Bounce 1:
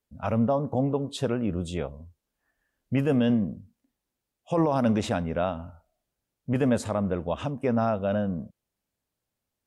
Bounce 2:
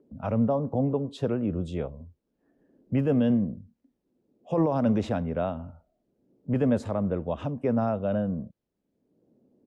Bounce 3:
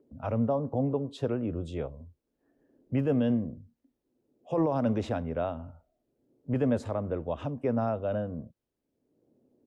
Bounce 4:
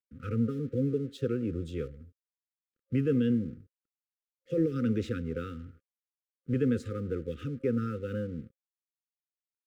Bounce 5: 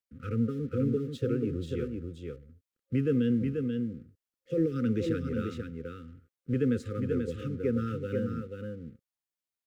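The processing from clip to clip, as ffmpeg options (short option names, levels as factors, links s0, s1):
-filter_complex "[0:a]firequalizer=gain_entry='entry(450,0);entry(780,-3);entry(1300,-5);entry(2600,-7);entry(5200,-9);entry(8700,-15)':delay=0.05:min_phase=1,acrossover=split=200|430|2100[s0][s1][s2][s3];[s1]acompressor=mode=upward:threshold=0.0126:ratio=2.5[s4];[s0][s4][s2][s3]amix=inputs=4:normalize=0"
-af "equalizer=f=190:w=7.1:g=-14.5,volume=0.794"
-af "aeval=exprs='sgn(val(0))*max(abs(val(0))-0.00141,0)':c=same,afftfilt=real='re*(1-between(b*sr/4096,530,1200))':imag='im*(1-between(b*sr/4096,530,1200))':win_size=4096:overlap=0.75"
-af "aecho=1:1:486:0.562"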